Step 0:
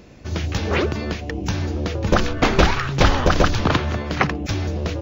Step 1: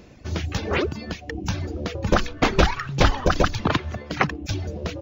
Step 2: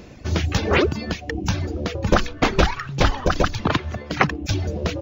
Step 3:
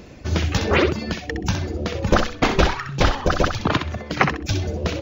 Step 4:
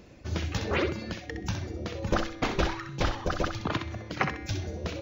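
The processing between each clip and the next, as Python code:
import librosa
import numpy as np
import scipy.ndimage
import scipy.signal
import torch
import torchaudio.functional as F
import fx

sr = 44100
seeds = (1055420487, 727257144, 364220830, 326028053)

y1 = fx.dereverb_blind(x, sr, rt60_s=1.6)
y1 = y1 * librosa.db_to_amplitude(-1.5)
y2 = fx.rider(y1, sr, range_db=5, speed_s=2.0)
y2 = y2 * librosa.db_to_amplitude(1.5)
y3 = fx.echo_thinned(y2, sr, ms=64, feedback_pct=20, hz=220.0, wet_db=-7.0)
y4 = fx.comb_fb(y3, sr, f0_hz=110.0, decay_s=1.5, harmonics='odd', damping=0.0, mix_pct=70)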